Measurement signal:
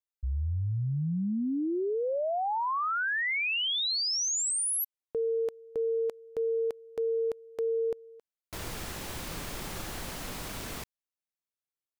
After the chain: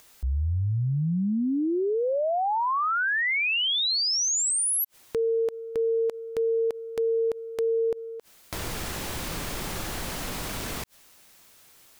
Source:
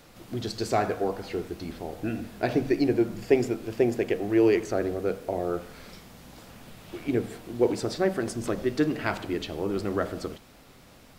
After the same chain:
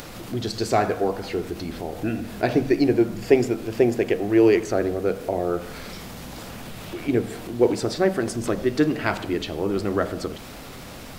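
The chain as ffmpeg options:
-af "acompressor=mode=upward:threshold=-33dB:ratio=2.5:attack=2.5:release=56:knee=2.83:detection=peak,volume=4.5dB"

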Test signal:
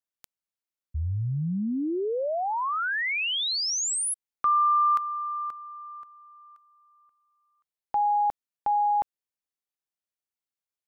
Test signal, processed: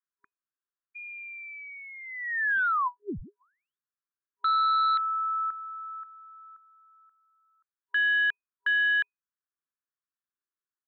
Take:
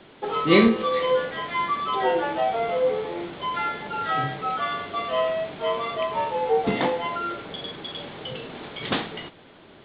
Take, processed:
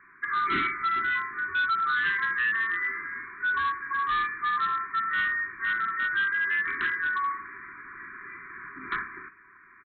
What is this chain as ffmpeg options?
-af "lowshelf=f=560:t=q:w=1.5:g=-13,lowpass=f=2.1k:t=q:w=0.5098,lowpass=f=2.1k:t=q:w=0.6013,lowpass=f=2.1k:t=q:w=0.9,lowpass=f=2.1k:t=q:w=2.563,afreqshift=-2500,aresample=8000,asoftclip=type=hard:threshold=-22.5dB,aresample=44100,afftfilt=real='re*(1-between(b*sr/4096,410,970))':imag='im*(1-between(b*sr/4096,410,970))':win_size=4096:overlap=0.75"

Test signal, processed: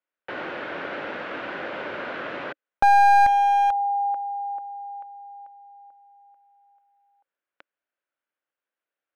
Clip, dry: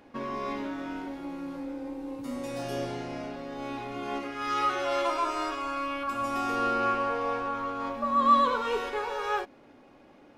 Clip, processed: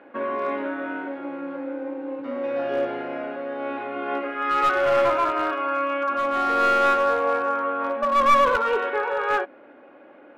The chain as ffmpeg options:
-af "acontrast=87,highpass=300,equalizer=f=310:t=q:w=4:g=4,equalizer=f=560:t=q:w=4:g=7,equalizer=f=1.5k:t=q:w=4:g=8,lowpass=f=2.8k:w=0.5412,lowpass=f=2.8k:w=1.3066,aeval=exprs='clip(val(0),-1,0.168)':c=same,volume=-2.5dB"

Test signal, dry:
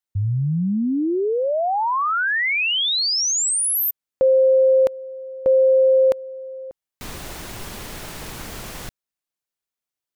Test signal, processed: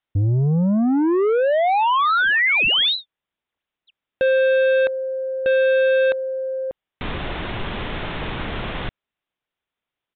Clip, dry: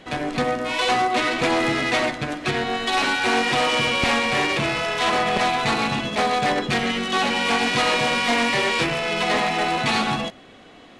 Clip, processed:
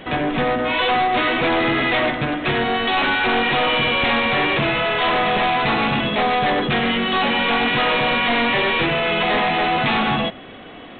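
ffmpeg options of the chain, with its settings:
-af "acontrast=62,aresample=8000,asoftclip=type=tanh:threshold=-17.5dB,aresample=44100,volume=2dB"

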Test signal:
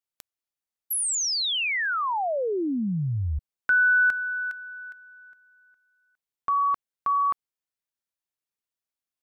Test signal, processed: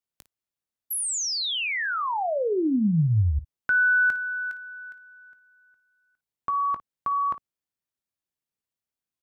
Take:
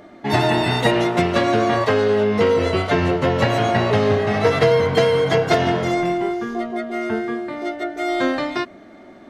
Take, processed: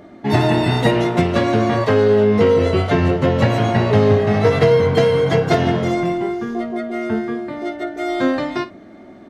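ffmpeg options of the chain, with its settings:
-filter_complex "[0:a]equalizer=f=120:w=0.32:g=7.5,asplit=2[a][b];[b]aecho=0:1:19|55:0.2|0.15[c];[a][c]amix=inputs=2:normalize=0,volume=-2dB"

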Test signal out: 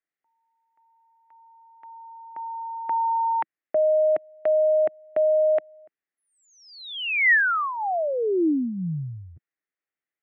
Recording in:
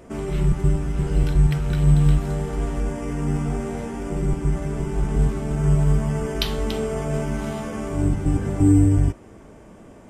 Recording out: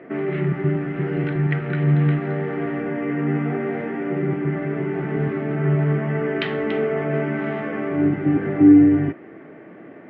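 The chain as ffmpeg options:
-af "highpass=f=160:w=0.5412,highpass=f=160:w=1.3066,equalizer=f=210:t=q:w=4:g=-8,equalizer=f=320:t=q:w=4:g=4,equalizer=f=530:t=q:w=4:g=-3,equalizer=f=970:t=q:w=4:g=-9,equalizer=f=1.9k:t=q:w=4:g=8,lowpass=f=2.4k:w=0.5412,lowpass=f=2.4k:w=1.3066,volume=5.5dB"

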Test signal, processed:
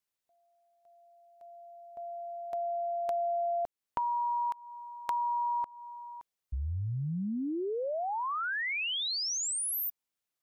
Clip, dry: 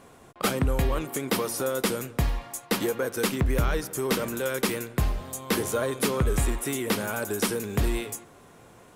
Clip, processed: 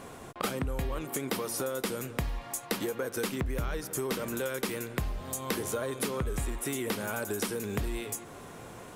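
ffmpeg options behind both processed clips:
-af "acompressor=threshold=-38dB:ratio=4,volume=6dB"

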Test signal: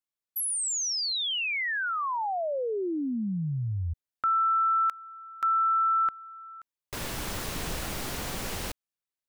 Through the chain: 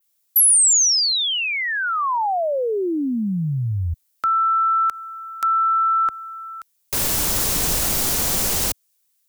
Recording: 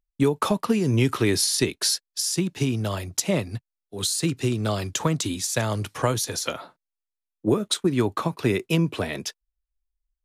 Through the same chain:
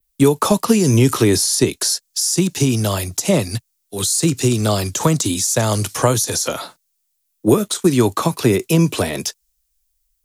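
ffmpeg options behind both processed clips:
-filter_complex "[0:a]adynamicequalizer=threshold=0.00794:dfrequency=6400:dqfactor=1.1:tfrequency=6400:tqfactor=1.1:attack=5:release=100:ratio=0.375:range=3.5:mode=boostabove:tftype=bell,acrossover=split=110|1200[a][b][c];[c]acompressor=threshold=-39dB:ratio=4:attack=0.18:release=83:knee=6:detection=peak[d];[a][b][d]amix=inputs=3:normalize=0,crystalizer=i=5:c=0,volume=7.5dB"

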